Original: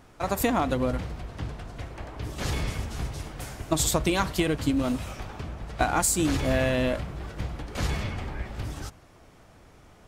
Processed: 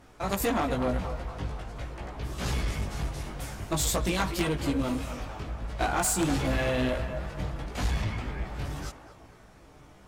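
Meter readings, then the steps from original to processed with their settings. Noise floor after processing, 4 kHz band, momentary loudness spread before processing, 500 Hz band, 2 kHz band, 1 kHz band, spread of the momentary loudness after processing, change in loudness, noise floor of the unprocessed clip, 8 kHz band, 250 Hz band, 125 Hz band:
-53 dBFS, -2.0 dB, 14 LU, -2.5 dB, -1.5 dB, -2.0 dB, 11 LU, -2.5 dB, -54 dBFS, -3.0 dB, -2.5 dB, -1.5 dB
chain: band-passed feedback delay 237 ms, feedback 61%, band-pass 970 Hz, level -9 dB; chorus voices 4, 0.42 Hz, delay 18 ms, depth 3.5 ms; Chebyshev shaper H 3 -13 dB, 5 -14 dB, 6 -16 dB, 8 -20 dB, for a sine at -13.5 dBFS

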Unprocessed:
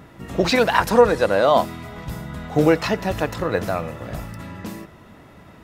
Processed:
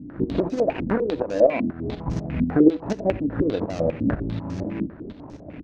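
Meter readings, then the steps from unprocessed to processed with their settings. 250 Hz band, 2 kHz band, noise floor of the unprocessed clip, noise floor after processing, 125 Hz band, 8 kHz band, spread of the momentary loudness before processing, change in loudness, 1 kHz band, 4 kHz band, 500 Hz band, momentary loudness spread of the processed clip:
+3.0 dB, -11.5 dB, -46 dBFS, -42 dBFS, -0.5 dB, under -10 dB, 18 LU, -4.0 dB, -11.0 dB, under -10 dB, -3.5 dB, 12 LU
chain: median filter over 41 samples; dynamic bell 370 Hz, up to +6 dB, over -30 dBFS, Q 1; compression 12:1, threshold -28 dBFS, peak gain reduction 22 dB; peaking EQ 290 Hz +9 dB 0.3 oct; tremolo saw up 4.1 Hz, depth 75%; delay 84 ms -14.5 dB; step-sequenced low-pass 10 Hz 250–6000 Hz; trim +8.5 dB

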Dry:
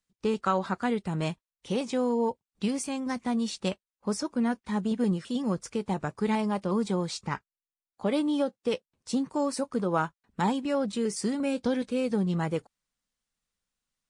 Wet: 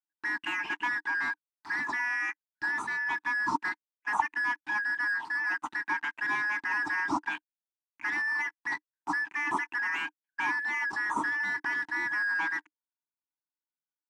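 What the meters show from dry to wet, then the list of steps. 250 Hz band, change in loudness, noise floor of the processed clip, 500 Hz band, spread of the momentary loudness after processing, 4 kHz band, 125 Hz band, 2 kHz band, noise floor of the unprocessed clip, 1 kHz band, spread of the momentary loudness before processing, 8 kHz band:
-16.5 dB, -0.5 dB, under -85 dBFS, -22.5 dB, 6 LU, -5.5 dB, under -20 dB, +15.5 dB, under -85 dBFS, +0.5 dB, 6 LU, -11.0 dB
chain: four frequency bands reordered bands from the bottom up 4123; waveshaping leveller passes 5; two resonant band-passes 530 Hz, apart 1.6 oct; trim +4 dB

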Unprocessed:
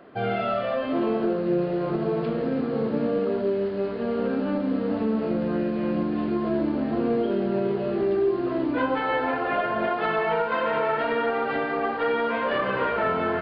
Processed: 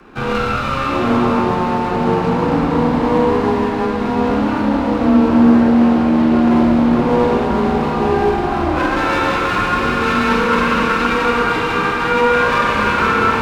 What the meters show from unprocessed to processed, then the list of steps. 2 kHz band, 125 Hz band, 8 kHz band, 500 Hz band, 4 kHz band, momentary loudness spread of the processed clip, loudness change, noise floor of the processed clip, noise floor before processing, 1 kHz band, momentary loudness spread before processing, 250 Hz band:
+12.0 dB, +12.0 dB, no reading, +6.5 dB, +13.5 dB, 5 LU, +10.0 dB, -19 dBFS, -29 dBFS, +11.5 dB, 2 LU, +11.5 dB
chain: comb filter that takes the minimum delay 0.77 ms; Schroeder reverb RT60 3.8 s, combs from 32 ms, DRR -2 dB; frequency shift +17 Hz; loudspeaker Doppler distortion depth 0.12 ms; trim +7.5 dB

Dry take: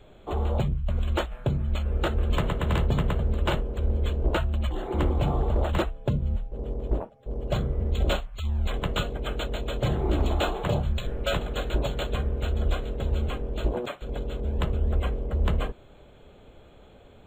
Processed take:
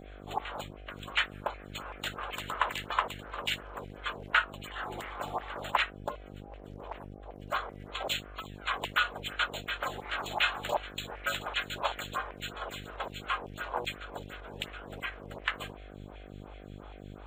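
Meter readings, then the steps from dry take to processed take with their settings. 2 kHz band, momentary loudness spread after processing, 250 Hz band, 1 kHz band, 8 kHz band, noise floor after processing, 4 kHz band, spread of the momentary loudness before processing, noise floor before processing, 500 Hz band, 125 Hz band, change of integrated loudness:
+5.0 dB, 17 LU, -14.5 dB, +1.0 dB, no reading, -48 dBFS, +1.5 dB, 6 LU, -52 dBFS, -10.0 dB, -21.0 dB, -6.0 dB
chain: LFO high-pass saw down 2.6 Hz 850–2300 Hz; mains buzz 50 Hz, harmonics 15, -46 dBFS -5 dB/octave; lamp-driven phase shifter 2.8 Hz; trim +4 dB

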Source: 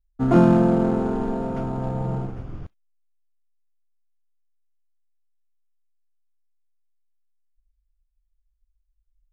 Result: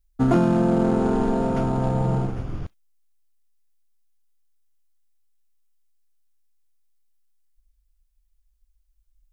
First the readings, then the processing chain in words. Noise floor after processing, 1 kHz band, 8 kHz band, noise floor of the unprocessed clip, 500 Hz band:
-67 dBFS, +1.0 dB, no reading, -72 dBFS, 0.0 dB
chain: treble shelf 3.6 kHz +7.5 dB; compression 6:1, threshold -20 dBFS, peak gain reduction 10 dB; trim +4.5 dB

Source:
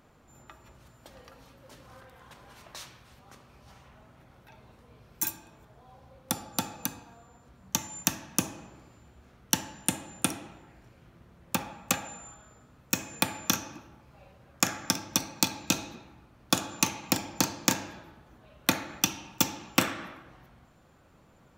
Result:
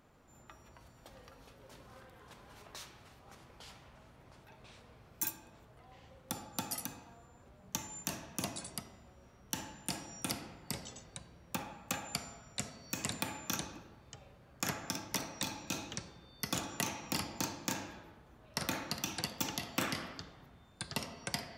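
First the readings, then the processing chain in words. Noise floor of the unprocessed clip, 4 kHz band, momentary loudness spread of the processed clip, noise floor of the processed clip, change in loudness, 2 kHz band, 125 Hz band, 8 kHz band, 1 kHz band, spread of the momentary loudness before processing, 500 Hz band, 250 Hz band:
-59 dBFS, -7.5 dB, 21 LU, -61 dBFS, -9.5 dB, -7.5 dB, -5.5 dB, -9.5 dB, -7.5 dB, 18 LU, -6.5 dB, -8.5 dB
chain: ever faster or slower copies 141 ms, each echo -4 st, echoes 3, each echo -6 dB; peak limiter -13.5 dBFS, peak gain reduction 11 dB; trim -5 dB

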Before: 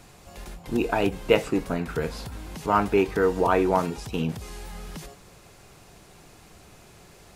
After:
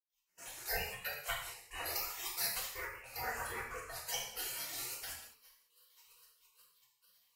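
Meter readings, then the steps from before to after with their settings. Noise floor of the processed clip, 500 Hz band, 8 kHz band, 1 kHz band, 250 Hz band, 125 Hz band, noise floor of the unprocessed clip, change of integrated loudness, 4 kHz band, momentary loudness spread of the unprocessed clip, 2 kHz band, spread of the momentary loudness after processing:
-81 dBFS, -25.0 dB, +3.5 dB, -17.5 dB, -33.5 dB, -23.5 dB, -52 dBFS, -14.5 dB, -3.0 dB, 19 LU, -8.0 dB, 9 LU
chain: drifting ripple filter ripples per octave 0.69, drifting +2.4 Hz, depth 12 dB; high-pass 97 Hz 12 dB/octave; static phaser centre 700 Hz, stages 8; on a send: feedback echo behind a high-pass 212 ms, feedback 45%, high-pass 4.5 kHz, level -6.5 dB; on the sum: compression 6:1, threshold -35 dBFS, peak gain reduction 17 dB; spectral noise reduction 16 dB; trance gate ".x..xxxxxx.x.x" 158 bpm -24 dB; spectral gate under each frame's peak -30 dB weak; level rider gain up to 14 dB; hum notches 50/100/150/200/250 Hz; gated-style reverb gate 240 ms falling, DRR -3.5 dB; trim +7 dB; AAC 96 kbps 44.1 kHz

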